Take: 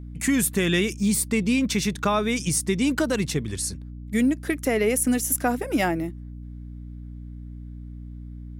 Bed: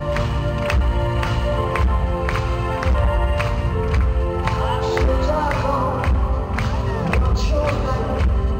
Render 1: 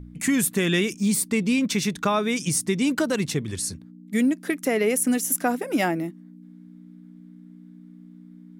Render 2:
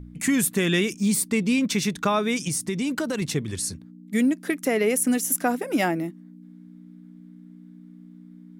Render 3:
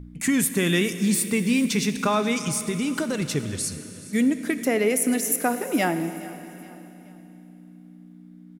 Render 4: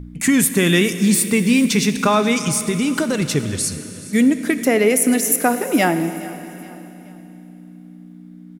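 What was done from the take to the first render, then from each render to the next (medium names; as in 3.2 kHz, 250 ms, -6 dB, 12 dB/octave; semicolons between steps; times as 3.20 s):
de-hum 60 Hz, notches 2
2.36–3.22 s: compression 3:1, threshold -23 dBFS
feedback delay 423 ms, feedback 43%, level -19 dB; Schroeder reverb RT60 3.3 s, combs from 27 ms, DRR 10.5 dB
trim +6.5 dB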